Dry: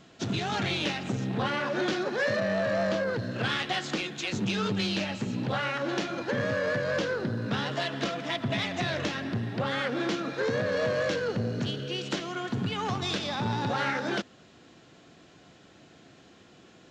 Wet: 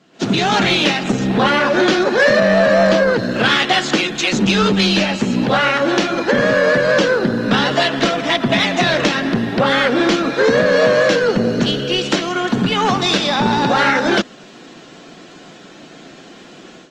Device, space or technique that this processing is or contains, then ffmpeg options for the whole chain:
video call: -af "highpass=f=160:w=0.5412,highpass=f=160:w=1.3066,dynaudnorm=f=120:g=3:m=5.62,volume=1.12" -ar 48000 -c:a libopus -b:a 24k

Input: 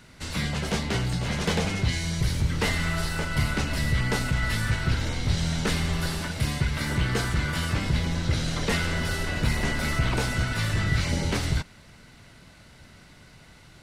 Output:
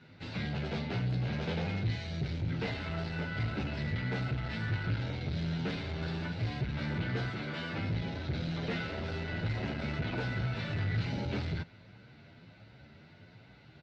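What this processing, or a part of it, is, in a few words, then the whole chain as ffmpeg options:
barber-pole flanger into a guitar amplifier: -filter_complex "[0:a]asettb=1/sr,asplit=3[s0][s1][s2];[s0]atrim=end=7.284[s3];[s1]atrim=start=7.28:end=7.78,asetpts=PTS-STARTPTS,afade=t=in:d=0.004:c=qsin,afade=t=out:st=0.496:d=0.004:c=qsin,highpass=210[s4];[s2]atrim=start=7.776[s5];[s3][s4]acrossfade=d=0.004:c1=hsin:c2=qsin[s6];[s6][s5]acrossfade=d=0.004:c1=qsin:c2=hsin,asplit=2[s7][s8];[s8]adelay=9.8,afreqshift=1.3[s9];[s7][s9]amix=inputs=2:normalize=1,asoftclip=type=tanh:threshold=0.0398,highpass=94,equalizer=f=110:t=q:w=4:g=6,equalizer=f=1100:t=q:w=4:g=-9,equalizer=f=1900:t=q:w=4:g=-5,equalizer=f=3100:t=q:w=4:g=-5,lowpass=f=3800:w=0.5412,lowpass=f=3800:w=1.3066"

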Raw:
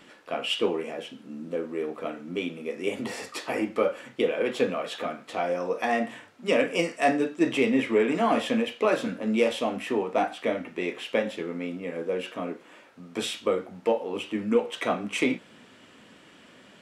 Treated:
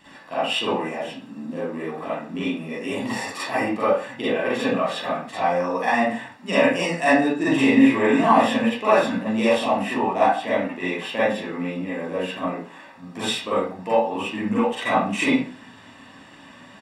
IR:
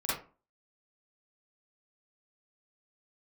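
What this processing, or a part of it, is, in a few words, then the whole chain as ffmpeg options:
microphone above a desk: -filter_complex "[0:a]aecho=1:1:1.1:0.56[s0];[1:a]atrim=start_sample=2205[s1];[s0][s1]afir=irnorm=-1:irlink=0,asettb=1/sr,asplit=3[s2][s3][s4];[s2]atrim=end=7.354[s5];[s3]atrim=start=7.35:end=8.23,asetpts=PTS-STARTPTS,afade=t=in:d=0.004:c=qsin,afade=t=out:st=0.876:d=0.004:c=qsin,asplit=2[s6][s7];[s7]adelay=44,volume=0.501[s8];[s6][s8]amix=inputs=2:normalize=0,atrim=end_sample=38808[s9];[s4]atrim=start=8.226[s10];[s5][s9]acrossfade=d=0.004:c1=hsin:c2=qsin[s11];[s11][s10]acrossfade=d=0.004:c1=qsin:c2=hsin"

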